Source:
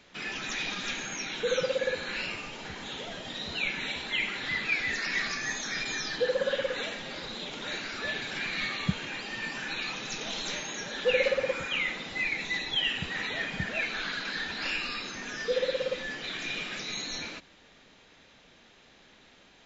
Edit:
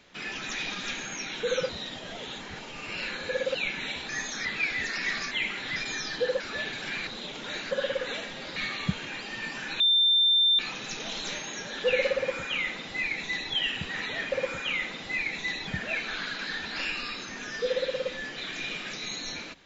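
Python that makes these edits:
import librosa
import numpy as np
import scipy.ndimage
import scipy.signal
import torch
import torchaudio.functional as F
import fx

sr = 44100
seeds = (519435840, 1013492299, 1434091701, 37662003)

y = fx.edit(x, sr, fx.reverse_span(start_s=1.69, length_s=1.86),
    fx.swap(start_s=4.09, length_s=0.45, other_s=5.4, other_length_s=0.36),
    fx.swap(start_s=6.4, length_s=0.85, other_s=7.89, other_length_s=0.67),
    fx.insert_tone(at_s=9.8, length_s=0.79, hz=3580.0, db=-18.5),
    fx.duplicate(start_s=11.38, length_s=1.35, to_s=13.53), tone=tone)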